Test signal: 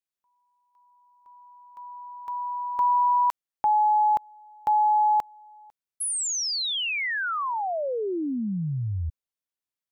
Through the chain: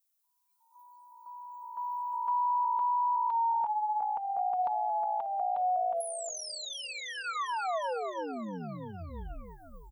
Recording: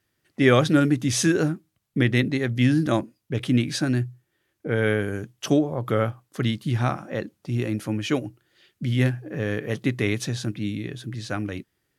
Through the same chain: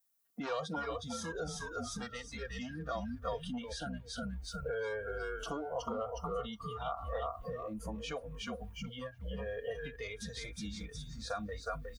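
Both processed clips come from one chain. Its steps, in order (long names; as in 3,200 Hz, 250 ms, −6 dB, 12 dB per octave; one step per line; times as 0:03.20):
background noise violet −53 dBFS
wave folding −12.5 dBFS
echo with shifted repeats 362 ms, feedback 53%, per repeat −58 Hz, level −5 dB
dynamic equaliser 3,600 Hz, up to +4 dB, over −40 dBFS, Q 0.76
downward compressor 12 to 1, threshold −29 dBFS
high-pass filter 42 Hz
comb filter 4.3 ms, depth 74%
noise reduction from a noise print of the clip's start 20 dB
brickwall limiter −26.5 dBFS
flat-topped bell 850 Hz +9 dB
level −6.5 dB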